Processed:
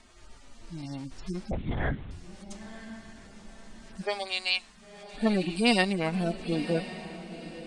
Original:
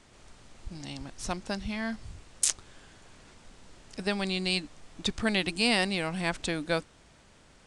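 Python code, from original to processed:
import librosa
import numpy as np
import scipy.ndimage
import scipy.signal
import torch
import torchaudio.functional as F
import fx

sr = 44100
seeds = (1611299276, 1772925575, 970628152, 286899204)

y = fx.hpss_only(x, sr, part='harmonic')
y = fx.highpass(y, sr, hz=fx.line((4.01, 420.0), (5.13, 1400.0)), slope=24, at=(4.01, 5.13), fade=0.02)
y = fx.transient(y, sr, attack_db=-1, sustain_db=-5, at=(5.83, 6.37), fade=0.02)
y = fx.echo_diffused(y, sr, ms=1015, feedback_pct=40, wet_db=-13.0)
y = fx.lpc_vocoder(y, sr, seeds[0], excitation='whisper', order=10, at=(1.51, 2.11))
y = y * librosa.db_to_amplitude(4.5)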